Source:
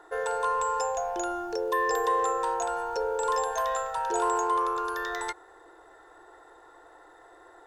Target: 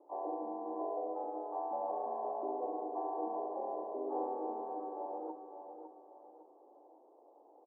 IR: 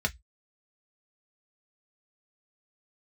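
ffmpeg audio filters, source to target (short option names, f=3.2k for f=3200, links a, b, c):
-filter_complex "[0:a]aemphasis=mode=production:type=50kf,aeval=exprs='val(0)*sin(2*PI*1200*n/s)':c=same,asplit=3[a][b][c];[b]asetrate=52444,aresample=44100,atempo=0.840896,volume=-7dB[d];[c]asetrate=66075,aresample=44100,atempo=0.66742,volume=-1dB[e];[a][d][e]amix=inputs=3:normalize=0,asuperpass=centerf=540:order=12:qfactor=0.83,asplit=2[f][g];[g]aecho=0:1:556|1112|1668|2224:0.398|0.147|0.0545|0.0202[h];[f][h]amix=inputs=2:normalize=0,volume=-4.5dB"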